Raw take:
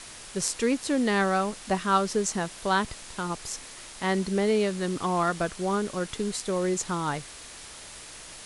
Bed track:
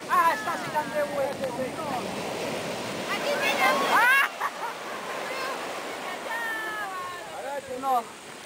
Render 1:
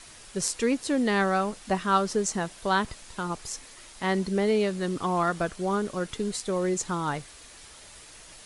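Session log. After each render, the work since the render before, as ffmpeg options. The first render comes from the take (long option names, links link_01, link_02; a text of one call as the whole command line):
ffmpeg -i in.wav -af "afftdn=noise_reduction=6:noise_floor=-44" out.wav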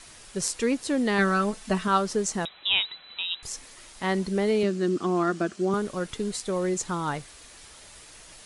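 ffmpeg -i in.wav -filter_complex "[0:a]asettb=1/sr,asplit=3[link_01][link_02][link_03];[link_01]atrim=end=1.184[link_04];[link_02]atrim=start=1.18:end=1.88,asetpts=PTS-STARTPTS,afade=type=in:duration=0.004:curve=qsin,afade=type=out:start_time=0.696:duration=0.004:curve=qsin,aecho=1:1:4.6:0.7,atrim=end_sample=30870[link_05];[link_03]atrim=start=1.876[link_06];[link_04][link_05]acrossfade=duration=0.004:curve1=hsin:curve2=qsin[link_07];[link_07][link_06]acrossfade=duration=0.004:curve1=qsin:curve2=hsin,asettb=1/sr,asplit=3[link_08][link_09][link_10];[link_08]atrim=end=2.454[link_11];[link_09]atrim=start=2.45:end=3.43,asetpts=PTS-STARTPTS,afade=type=in:duration=0.004:curve=qsin,afade=type=out:start_time=0.976:duration=0.004:curve=qsin,lowpass=frequency=3400:width_type=q:width=0.5098,lowpass=frequency=3400:width_type=q:width=0.6013,lowpass=frequency=3400:width_type=q:width=0.9,lowpass=frequency=3400:width_type=q:width=2.563,afreqshift=-4000[link_12];[link_10]atrim=start=3.426[link_13];[link_11][link_12]acrossfade=duration=0.004:curve1=hsin:curve2=qsin[link_14];[link_14][link_13]acrossfade=duration=0.004:curve1=qsin:curve2=hsin,asettb=1/sr,asplit=3[link_15][link_16][link_17];[link_15]atrim=end=4.634[link_18];[link_16]atrim=start=4.63:end=5.74,asetpts=PTS-STARTPTS,afade=type=in:duration=0.004:curve=qsin,afade=type=out:start_time=1.106:duration=0.004:curve=qsin,highpass=170,equalizer=frequency=210:width_type=q:width=4:gain=7,equalizer=frequency=350:width_type=q:width=4:gain=9,equalizer=frequency=500:width_type=q:width=4:gain=-6,equalizer=frequency=910:width_type=q:width=4:gain=-9,equalizer=frequency=2100:width_type=q:width=4:gain=-4,equalizer=frequency=3600:width_type=q:width=4:gain=-4,lowpass=frequency=8300:width=0.5412,lowpass=frequency=8300:width=1.3066[link_19];[link_17]atrim=start=5.736[link_20];[link_18][link_19]acrossfade=duration=0.004:curve1=hsin:curve2=qsin[link_21];[link_21][link_20]acrossfade=duration=0.004:curve1=qsin:curve2=hsin" out.wav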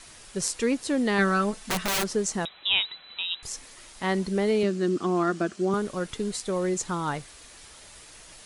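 ffmpeg -i in.wav -filter_complex "[0:a]asettb=1/sr,asplit=3[link_01][link_02][link_03];[link_01]atrim=end=1.634[link_04];[link_02]atrim=start=1.63:end=2.1,asetpts=PTS-STARTPTS,afade=type=in:duration=0.004:curve=qsin,afade=type=out:start_time=0.466:duration=0.004:curve=qsin,aeval=exprs='(mod(11.2*val(0)+1,2)-1)/11.2':channel_layout=same[link_05];[link_03]atrim=start=2.096[link_06];[link_04][link_05]acrossfade=duration=0.004:curve1=hsin:curve2=qsin[link_07];[link_07][link_06]acrossfade=duration=0.004:curve1=qsin:curve2=hsin" out.wav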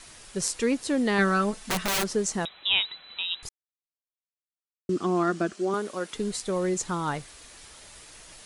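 ffmpeg -i in.wav -filter_complex "[0:a]asettb=1/sr,asplit=3[link_01][link_02][link_03];[link_01]atrim=end=5.534[link_04];[link_02]atrim=start=5.53:end=6.15,asetpts=PTS-STARTPTS,afade=type=in:duration=0.004:curve=qsin,afade=type=out:start_time=0.616:duration=0.004:curve=qsin,highpass=280[link_05];[link_03]atrim=start=6.146[link_06];[link_04][link_05]acrossfade=duration=0.004:curve1=hsin:curve2=qsin[link_07];[link_07][link_06]acrossfade=duration=0.004:curve1=qsin:curve2=hsin,asplit=3[link_08][link_09][link_10];[link_08]atrim=end=3.49,asetpts=PTS-STARTPTS,afade=type=out:start_time=3.486:duration=0.004:curve=hsin[link_11];[link_09]atrim=start=3.49:end=4.89,asetpts=PTS-STARTPTS,volume=0[link_12];[link_10]atrim=start=4.89,asetpts=PTS-STARTPTS,afade=type=in:duration=0.004:curve=hsin[link_13];[link_11][link_12][link_13]concat=n=3:v=0:a=1" out.wav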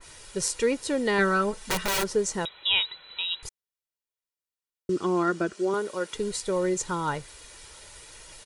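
ffmpeg -i in.wav -af "aecho=1:1:2.1:0.44,adynamicequalizer=threshold=0.0178:dfrequency=2100:dqfactor=0.7:tfrequency=2100:tqfactor=0.7:attack=5:release=100:ratio=0.375:range=2:mode=cutabove:tftype=highshelf" out.wav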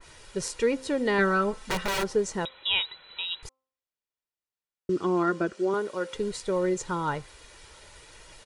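ffmpeg -i in.wav -af "lowpass=frequency=3600:poles=1,bandreject=frequency=262.4:width_type=h:width=4,bandreject=frequency=524.8:width_type=h:width=4,bandreject=frequency=787.2:width_type=h:width=4,bandreject=frequency=1049.6:width_type=h:width=4,bandreject=frequency=1312:width_type=h:width=4" out.wav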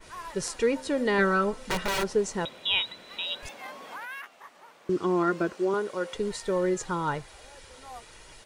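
ffmpeg -i in.wav -i bed.wav -filter_complex "[1:a]volume=-19.5dB[link_01];[0:a][link_01]amix=inputs=2:normalize=0" out.wav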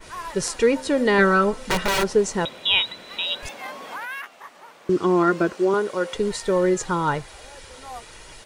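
ffmpeg -i in.wav -af "volume=6.5dB" out.wav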